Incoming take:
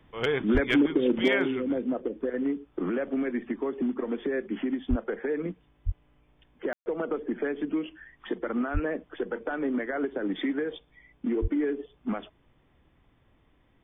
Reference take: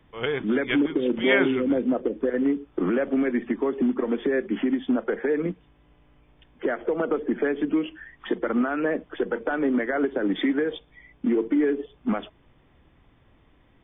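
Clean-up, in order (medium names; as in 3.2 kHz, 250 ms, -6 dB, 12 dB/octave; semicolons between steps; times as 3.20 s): clip repair -14 dBFS; de-plosive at 0.53/4.89/5.85/8.73/11.41 s; room tone fill 6.73–6.86 s; trim 0 dB, from 1.28 s +5.5 dB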